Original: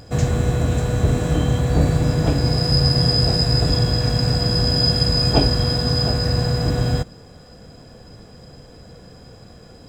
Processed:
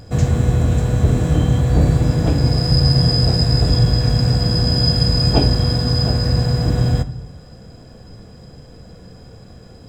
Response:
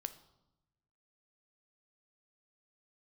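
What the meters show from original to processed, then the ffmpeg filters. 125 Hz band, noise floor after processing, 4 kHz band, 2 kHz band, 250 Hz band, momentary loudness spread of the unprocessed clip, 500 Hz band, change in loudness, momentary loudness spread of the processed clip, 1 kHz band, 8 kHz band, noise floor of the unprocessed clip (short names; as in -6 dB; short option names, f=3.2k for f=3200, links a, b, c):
+4.0 dB, -41 dBFS, -0.5 dB, -1.5 dB, +2.5 dB, 4 LU, -0.5 dB, +2.5 dB, 3 LU, -0.5 dB, -1.0 dB, -44 dBFS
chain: -filter_complex "[0:a]asplit=2[a][b];[1:a]atrim=start_sample=2205,lowshelf=f=300:g=6.5[c];[b][c]afir=irnorm=-1:irlink=0,volume=10dB[d];[a][d]amix=inputs=2:normalize=0,volume=-11.5dB"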